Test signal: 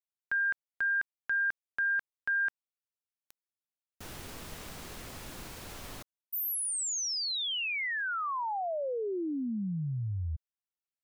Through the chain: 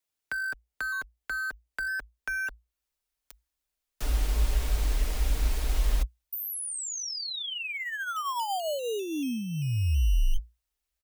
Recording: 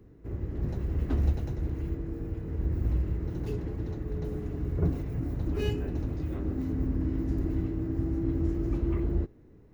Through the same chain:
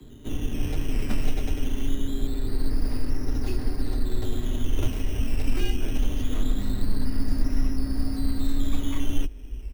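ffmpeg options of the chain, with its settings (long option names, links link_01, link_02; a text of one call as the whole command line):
ffmpeg -i in.wav -filter_complex "[0:a]asubboost=boost=10.5:cutoff=65,aecho=1:1:6.1:0.38,acrossover=split=110|230|900[link_01][link_02][link_03][link_04];[link_01]acompressor=threshold=-32dB:ratio=2.5[link_05];[link_02]acompressor=threshold=-44dB:ratio=2.5[link_06];[link_03]acompressor=threshold=-42dB:ratio=5[link_07];[link_04]acompressor=threshold=-48dB:ratio=2.5[link_08];[link_05][link_06][link_07][link_08]amix=inputs=4:normalize=0,acrossover=split=1200[link_09][link_10];[link_09]acrusher=samples=12:mix=1:aa=0.000001:lfo=1:lforange=7.2:lforate=0.23[link_11];[link_11][link_10]amix=inputs=2:normalize=0,afreqshift=-58,volume=9dB" out.wav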